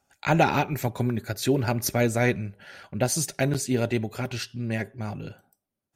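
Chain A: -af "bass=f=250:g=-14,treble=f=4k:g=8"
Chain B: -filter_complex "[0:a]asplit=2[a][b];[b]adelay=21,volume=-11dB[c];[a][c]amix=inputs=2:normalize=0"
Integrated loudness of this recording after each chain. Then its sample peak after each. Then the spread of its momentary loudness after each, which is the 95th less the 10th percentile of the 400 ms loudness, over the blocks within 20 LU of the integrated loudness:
-25.5, -26.0 LUFS; -6.5, -6.0 dBFS; 19, 13 LU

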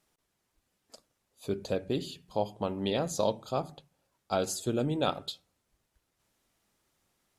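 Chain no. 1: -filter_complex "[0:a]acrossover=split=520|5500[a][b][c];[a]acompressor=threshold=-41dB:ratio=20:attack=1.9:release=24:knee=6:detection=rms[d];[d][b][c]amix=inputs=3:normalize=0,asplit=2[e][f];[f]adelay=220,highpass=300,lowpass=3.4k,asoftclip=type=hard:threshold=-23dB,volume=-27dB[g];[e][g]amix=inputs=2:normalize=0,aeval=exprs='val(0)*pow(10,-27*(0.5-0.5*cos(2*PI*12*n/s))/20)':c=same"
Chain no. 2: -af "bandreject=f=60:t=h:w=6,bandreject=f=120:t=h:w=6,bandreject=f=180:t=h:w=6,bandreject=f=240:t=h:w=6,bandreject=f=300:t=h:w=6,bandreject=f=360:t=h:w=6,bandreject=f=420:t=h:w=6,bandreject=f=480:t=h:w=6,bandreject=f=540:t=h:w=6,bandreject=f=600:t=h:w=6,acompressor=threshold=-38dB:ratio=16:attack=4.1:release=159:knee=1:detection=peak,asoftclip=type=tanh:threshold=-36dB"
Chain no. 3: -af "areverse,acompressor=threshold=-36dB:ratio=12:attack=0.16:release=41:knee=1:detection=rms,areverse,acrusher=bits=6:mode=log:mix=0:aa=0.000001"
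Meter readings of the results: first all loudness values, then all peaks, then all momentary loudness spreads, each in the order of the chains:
-42.0, -46.0, -44.0 LUFS; -15.0, -36.0, -33.5 dBFS; 12, 12, 14 LU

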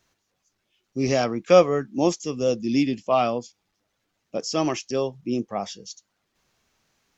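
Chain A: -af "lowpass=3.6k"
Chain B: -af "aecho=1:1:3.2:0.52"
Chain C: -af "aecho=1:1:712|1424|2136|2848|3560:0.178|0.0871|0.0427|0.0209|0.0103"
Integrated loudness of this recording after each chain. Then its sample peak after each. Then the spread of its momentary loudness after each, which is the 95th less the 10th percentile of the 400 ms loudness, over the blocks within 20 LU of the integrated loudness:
-23.5, -22.5, -23.5 LUFS; -3.5, -3.5, -3.5 dBFS; 15, 16, 19 LU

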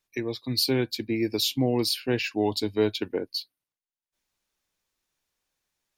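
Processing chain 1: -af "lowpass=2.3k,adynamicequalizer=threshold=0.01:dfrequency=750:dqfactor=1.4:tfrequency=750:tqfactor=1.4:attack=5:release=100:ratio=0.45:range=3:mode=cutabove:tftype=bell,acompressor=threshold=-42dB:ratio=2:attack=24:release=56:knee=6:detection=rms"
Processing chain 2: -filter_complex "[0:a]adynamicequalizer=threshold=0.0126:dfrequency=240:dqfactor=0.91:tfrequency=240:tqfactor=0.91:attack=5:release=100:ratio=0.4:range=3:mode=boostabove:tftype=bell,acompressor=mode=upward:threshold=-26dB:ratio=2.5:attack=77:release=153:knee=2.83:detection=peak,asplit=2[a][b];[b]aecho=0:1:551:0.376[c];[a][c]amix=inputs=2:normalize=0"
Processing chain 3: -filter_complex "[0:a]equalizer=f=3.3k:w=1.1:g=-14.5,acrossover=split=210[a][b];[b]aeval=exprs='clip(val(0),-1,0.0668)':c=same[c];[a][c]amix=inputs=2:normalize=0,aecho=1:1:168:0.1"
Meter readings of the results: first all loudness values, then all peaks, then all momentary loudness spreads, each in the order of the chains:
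-37.5, -23.0, -29.0 LUFS; -22.5, -6.5, -14.0 dBFS; 5, 14, 7 LU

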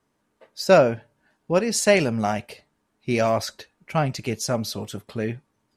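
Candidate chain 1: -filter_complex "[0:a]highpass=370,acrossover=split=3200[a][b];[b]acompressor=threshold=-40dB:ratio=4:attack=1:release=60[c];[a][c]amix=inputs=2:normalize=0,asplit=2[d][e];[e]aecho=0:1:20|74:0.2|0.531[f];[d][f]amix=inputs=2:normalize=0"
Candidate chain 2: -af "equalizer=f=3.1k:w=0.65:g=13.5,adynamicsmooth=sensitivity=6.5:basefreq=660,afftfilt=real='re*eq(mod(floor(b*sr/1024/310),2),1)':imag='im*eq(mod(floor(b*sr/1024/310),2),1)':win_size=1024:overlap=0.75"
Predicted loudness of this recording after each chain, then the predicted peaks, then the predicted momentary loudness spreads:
-23.5, -22.0 LUFS; -2.0, -2.0 dBFS; 19, 21 LU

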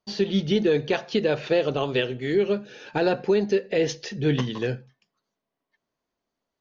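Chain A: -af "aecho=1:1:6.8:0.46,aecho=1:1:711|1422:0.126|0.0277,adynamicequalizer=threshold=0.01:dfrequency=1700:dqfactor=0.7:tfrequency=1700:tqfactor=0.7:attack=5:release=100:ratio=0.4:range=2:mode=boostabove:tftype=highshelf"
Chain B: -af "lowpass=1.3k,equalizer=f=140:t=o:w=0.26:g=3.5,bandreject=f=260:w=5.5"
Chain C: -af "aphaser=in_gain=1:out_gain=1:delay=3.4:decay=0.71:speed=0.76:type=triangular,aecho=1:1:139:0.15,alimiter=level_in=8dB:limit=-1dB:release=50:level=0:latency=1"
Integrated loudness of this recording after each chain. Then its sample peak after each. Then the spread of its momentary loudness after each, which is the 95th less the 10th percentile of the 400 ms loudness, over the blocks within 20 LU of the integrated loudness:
-23.5, -25.5, -16.0 LUFS; -8.5, -11.0, -1.0 dBFS; 8, 7, 7 LU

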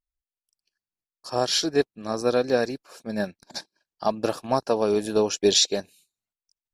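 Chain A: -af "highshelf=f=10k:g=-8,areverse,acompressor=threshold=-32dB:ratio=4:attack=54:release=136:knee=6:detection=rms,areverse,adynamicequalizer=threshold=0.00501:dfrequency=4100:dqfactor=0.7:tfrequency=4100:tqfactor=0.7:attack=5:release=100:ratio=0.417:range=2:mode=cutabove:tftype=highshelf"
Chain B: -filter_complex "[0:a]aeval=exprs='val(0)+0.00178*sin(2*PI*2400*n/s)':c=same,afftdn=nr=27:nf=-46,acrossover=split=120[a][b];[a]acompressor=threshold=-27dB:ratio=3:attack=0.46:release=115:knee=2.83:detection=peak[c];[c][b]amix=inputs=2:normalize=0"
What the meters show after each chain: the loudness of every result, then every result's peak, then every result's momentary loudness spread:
-33.5, -24.5 LUFS; -16.5, -7.0 dBFS; 9, 13 LU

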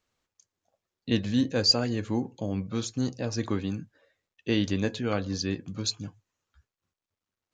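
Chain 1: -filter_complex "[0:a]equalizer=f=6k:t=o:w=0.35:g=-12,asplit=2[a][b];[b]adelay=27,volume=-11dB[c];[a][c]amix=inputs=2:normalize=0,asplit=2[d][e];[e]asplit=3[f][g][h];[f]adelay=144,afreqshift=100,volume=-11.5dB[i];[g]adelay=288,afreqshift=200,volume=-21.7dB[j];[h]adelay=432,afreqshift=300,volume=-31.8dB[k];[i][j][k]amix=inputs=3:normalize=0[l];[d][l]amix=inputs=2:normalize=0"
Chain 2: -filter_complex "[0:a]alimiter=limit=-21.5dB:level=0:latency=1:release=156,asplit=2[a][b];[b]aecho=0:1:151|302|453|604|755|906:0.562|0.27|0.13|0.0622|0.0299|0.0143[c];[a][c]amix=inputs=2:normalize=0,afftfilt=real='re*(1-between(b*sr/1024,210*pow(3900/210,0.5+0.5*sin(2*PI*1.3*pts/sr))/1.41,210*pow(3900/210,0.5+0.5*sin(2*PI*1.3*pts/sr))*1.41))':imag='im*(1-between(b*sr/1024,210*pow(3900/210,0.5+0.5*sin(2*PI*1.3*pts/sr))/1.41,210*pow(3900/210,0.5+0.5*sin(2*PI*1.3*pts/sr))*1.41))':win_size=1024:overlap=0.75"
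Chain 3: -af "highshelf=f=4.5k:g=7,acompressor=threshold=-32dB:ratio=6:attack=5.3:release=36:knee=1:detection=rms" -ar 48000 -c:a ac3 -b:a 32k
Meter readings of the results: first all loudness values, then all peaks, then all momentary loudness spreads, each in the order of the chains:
-29.0, -34.0, -36.5 LUFS; -10.5, -18.0, -21.5 dBFS; 14, 12, 9 LU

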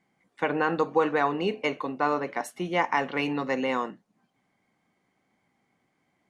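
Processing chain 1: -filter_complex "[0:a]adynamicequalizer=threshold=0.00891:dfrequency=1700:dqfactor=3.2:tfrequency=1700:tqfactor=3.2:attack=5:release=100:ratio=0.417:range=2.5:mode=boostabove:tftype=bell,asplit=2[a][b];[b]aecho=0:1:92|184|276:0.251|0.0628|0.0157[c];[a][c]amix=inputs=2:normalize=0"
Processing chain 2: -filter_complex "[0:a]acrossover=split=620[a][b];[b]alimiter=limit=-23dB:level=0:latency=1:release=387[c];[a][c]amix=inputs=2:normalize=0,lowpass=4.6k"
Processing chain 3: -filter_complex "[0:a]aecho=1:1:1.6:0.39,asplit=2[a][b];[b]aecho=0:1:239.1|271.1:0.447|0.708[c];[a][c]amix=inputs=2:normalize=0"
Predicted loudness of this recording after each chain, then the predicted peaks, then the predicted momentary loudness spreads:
-26.5, -30.0, -25.5 LUFS; -9.5, -13.0, -10.0 dBFS; 7, 7, 7 LU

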